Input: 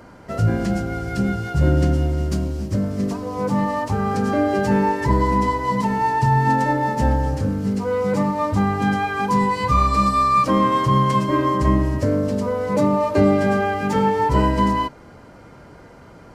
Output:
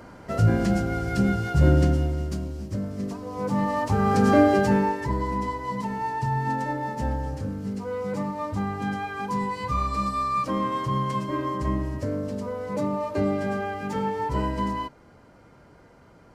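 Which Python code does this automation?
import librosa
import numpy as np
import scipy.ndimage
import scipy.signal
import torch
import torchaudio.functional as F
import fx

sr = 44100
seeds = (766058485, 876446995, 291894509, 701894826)

y = fx.gain(x, sr, db=fx.line((1.72, -1.0), (2.38, -8.0), (3.18, -8.0), (4.37, 3.0), (5.12, -9.0)))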